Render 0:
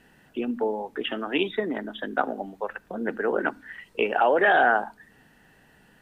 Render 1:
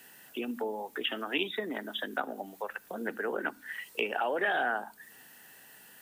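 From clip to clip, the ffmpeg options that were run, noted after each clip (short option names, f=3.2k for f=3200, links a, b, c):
-filter_complex "[0:a]acrossover=split=290[a][b];[b]acompressor=threshold=-36dB:ratio=2[c];[a][c]amix=inputs=2:normalize=0,aemphasis=mode=production:type=riaa"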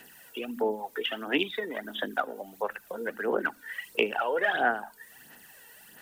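-af "aphaser=in_gain=1:out_gain=1:delay=2.2:decay=0.58:speed=1.5:type=sinusoidal"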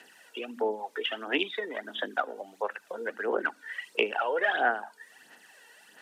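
-af "highpass=310,lowpass=7.2k"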